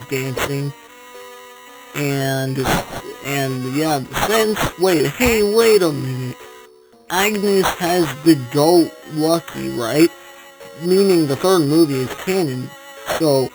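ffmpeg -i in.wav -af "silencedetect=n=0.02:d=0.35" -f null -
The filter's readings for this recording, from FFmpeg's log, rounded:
silence_start: 6.65
silence_end: 7.10 | silence_duration: 0.45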